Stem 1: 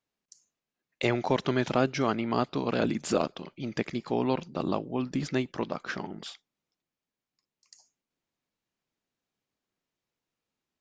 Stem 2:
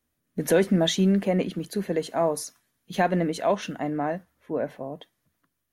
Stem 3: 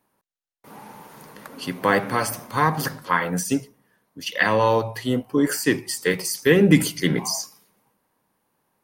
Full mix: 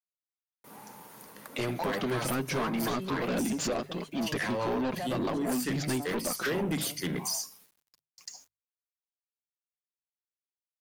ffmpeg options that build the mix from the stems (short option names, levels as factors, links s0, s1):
-filter_complex "[0:a]dynaudnorm=f=850:g=3:m=6.31,flanger=delay=3.2:depth=5.8:regen=-3:speed=1.4:shape=triangular,adelay=550,volume=1[s0];[1:a]aecho=1:1:7.2:0.86,adelay=2000,volume=0.141[s1];[2:a]highshelf=f=6200:g=8,volume=0.447[s2];[s0][s2]amix=inputs=2:normalize=0,acrusher=bits=9:mix=0:aa=0.000001,acompressor=threshold=0.0631:ratio=2.5,volume=1[s3];[s1][s3]amix=inputs=2:normalize=0,bandreject=f=50:t=h:w=6,bandreject=f=100:t=h:w=6,bandreject=f=150:t=h:w=6,asoftclip=type=tanh:threshold=0.0531"